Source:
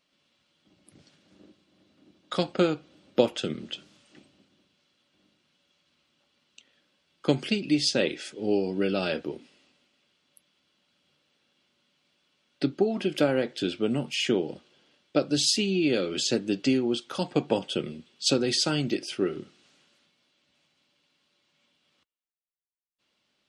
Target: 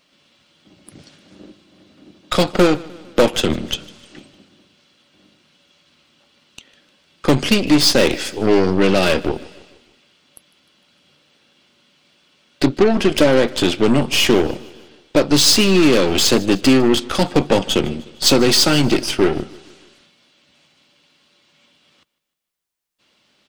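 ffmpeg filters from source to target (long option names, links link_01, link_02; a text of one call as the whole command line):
ffmpeg -i in.wav -af "aeval=exprs='0.562*sin(PI/2*2.24*val(0)/0.562)':channel_layout=same,aeval=exprs='0.562*(cos(1*acos(clip(val(0)/0.562,-1,1)))-cos(1*PI/2))+0.0708*(cos(8*acos(clip(val(0)/0.562,-1,1)))-cos(8*PI/2))':channel_layout=same,asoftclip=type=tanh:threshold=-7dB,aecho=1:1:152|304|456|608:0.0841|0.0438|0.0228|0.0118,volume=2.5dB" out.wav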